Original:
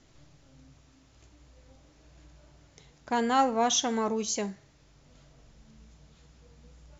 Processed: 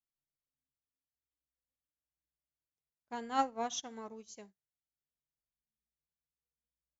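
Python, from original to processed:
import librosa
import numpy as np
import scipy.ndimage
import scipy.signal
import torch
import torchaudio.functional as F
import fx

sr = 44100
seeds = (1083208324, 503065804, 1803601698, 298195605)

y = fx.upward_expand(x, sr, threshold_db=-48.0, expansion=2.5)
y = y * 10.0 ** (-5.5 / 20.0)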